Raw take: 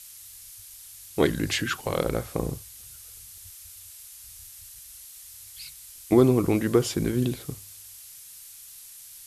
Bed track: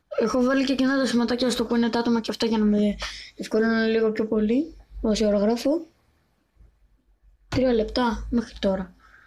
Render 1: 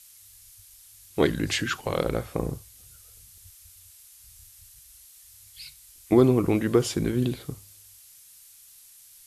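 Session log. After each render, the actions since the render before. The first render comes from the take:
noise reduction from a noise print 6 dB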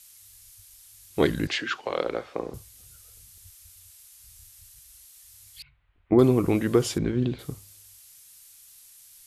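0:01.47–0:02.54: three-way crossover with the lows and the highs turned down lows −20 dB, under 280 Hz, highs −24 dB, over 5,600 Hz
0:05.62–0:06.19: Gaussian smoothing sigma 4.4 samples
0:06.98–0:07.39: high-frequency loss of the air 170 metres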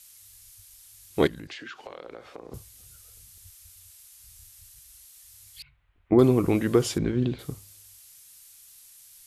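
0:01.27–0:02.52: downward compressor 8 to 1, threshold −37 dBFS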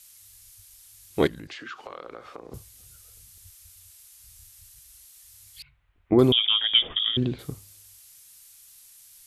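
0:01.54–0:02.40: parametric band 1,200 Hz +9 dB 0.37 octaves
0:06.32–0:07.17: voice inversion scrambler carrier 3,500 Hz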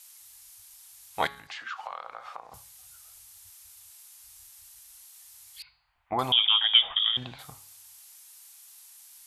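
low shelf with overshoot 550 Hz −13.5 dB, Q 3
hum removal 139.5 Hz, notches 35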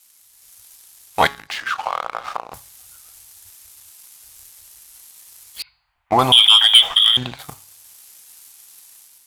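leveller curve on the samples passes 2
automatic gain control gain up to 8 dB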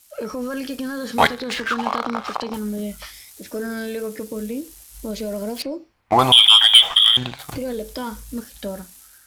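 mix in bed track −6.5 dB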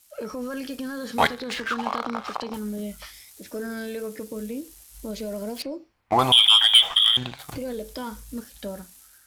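level −4.5 dB

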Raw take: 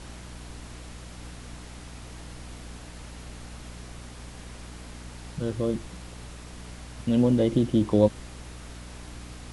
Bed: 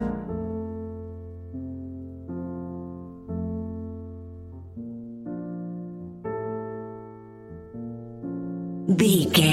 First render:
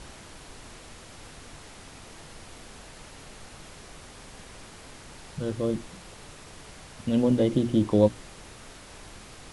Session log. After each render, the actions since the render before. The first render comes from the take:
mains-hum notches 60/120/180/240/300/360 Hz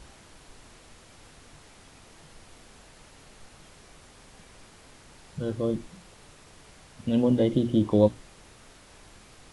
noise reduction from a noise print 6 dB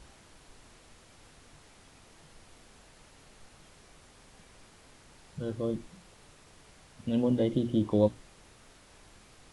level −4.5 dB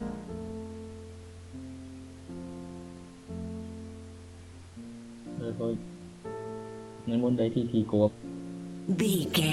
mix in bed −8 dB

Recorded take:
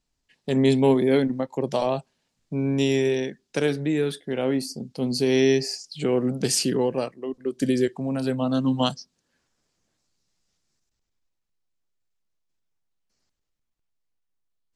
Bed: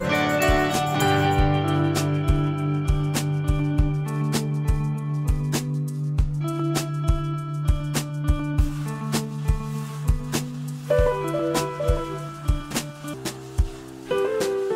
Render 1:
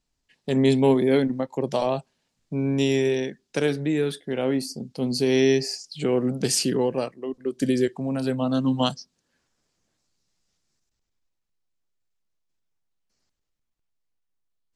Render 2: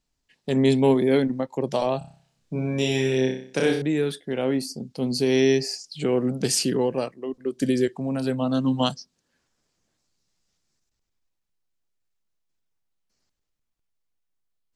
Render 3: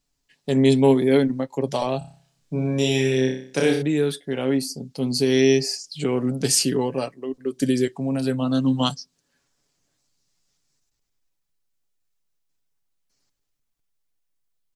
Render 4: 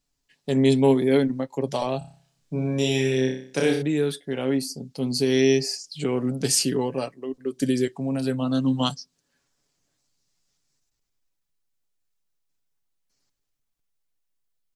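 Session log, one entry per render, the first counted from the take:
no processing that can be heard
0:01.98–0:03.82: flutter between parallel walls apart 5.3 metres, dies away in 0.5 s
high-shelf EQ 5,100 Hz +5.5 dB; comb filter 7.1 ms, depth 42%
level −2 dB

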